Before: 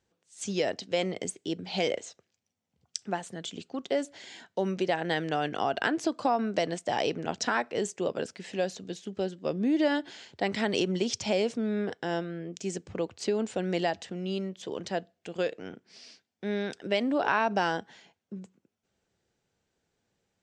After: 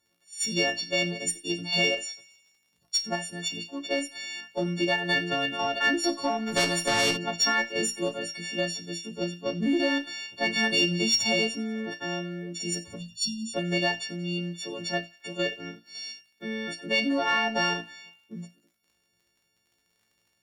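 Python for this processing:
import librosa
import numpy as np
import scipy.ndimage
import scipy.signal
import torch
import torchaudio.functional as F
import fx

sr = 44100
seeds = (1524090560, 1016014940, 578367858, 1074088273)

p1 = fx.freq_snap(x, sr, grid_st=4)
p2 = fx.level_steps(p1, sr, step_db=14)
p3 = p1 + (p2 * 10.0 ** (-1.0 / 20.0))
p4 = fx.dmg_crackle(p3, sr, seeds[0], per_s=60.0, level_db=-51.0)
p5 = fx.cheby_harmonics(p4, sr, harmonics=(4, 5), levels_db=(-32, -29), full_scale_db=-7.5)
p6 = fx.brickwall_bandstop(p5, sr, low_hz=260.0, high_hz=2800.0, at=(12.95, 13.53), fade=0.02)
p7 = fx.comb_fb(p6, sr, f0_hz=57.0, decay_s=0.22, harmonics='all', damping=0.0, mix_pct=90)
p8 = p7 + fx.echo_wet_highpass(p7, sr, ms=91, feedback_pct=62, hz=2000.0, wet_db=-19.5, dry=0)
y = fx.spectral_comp(p8, sr, ratio=2.0, at=(6.46, 7.16), fade=0.02)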